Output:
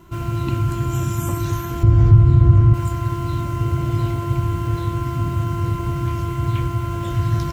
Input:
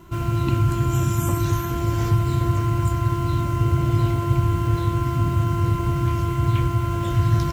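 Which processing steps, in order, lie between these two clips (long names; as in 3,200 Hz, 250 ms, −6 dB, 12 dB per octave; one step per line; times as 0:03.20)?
0:01.83–0:02.74: RIAA equalisation playback
in parallel at −3 dB: brickwall limiter −8.5 dBFS, peak gain reduction 11 dB
on the sum: level −5.5 dB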